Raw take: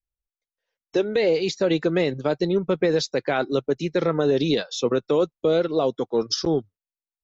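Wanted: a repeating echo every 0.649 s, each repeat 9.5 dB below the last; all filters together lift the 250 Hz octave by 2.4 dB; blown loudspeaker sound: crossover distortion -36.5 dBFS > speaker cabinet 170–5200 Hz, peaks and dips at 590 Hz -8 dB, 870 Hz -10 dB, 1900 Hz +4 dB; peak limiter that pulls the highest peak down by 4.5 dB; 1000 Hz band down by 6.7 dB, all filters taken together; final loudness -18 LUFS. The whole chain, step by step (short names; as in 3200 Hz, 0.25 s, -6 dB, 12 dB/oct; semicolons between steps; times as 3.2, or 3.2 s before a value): bell 250 Hz +5.5 dB; bell 1000 Hz -4.5 dB; limiter -12.5 dBFS; feedback echo 0.649 s, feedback 33%, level -9.5 dB; crossover distortion -36.5 dBFS; speaker cabinet 170–5200 Hz, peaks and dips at 590 Hz -8 dB, 870 Hz -10 dB, 1900 Hz +4 dB; gain +8 dB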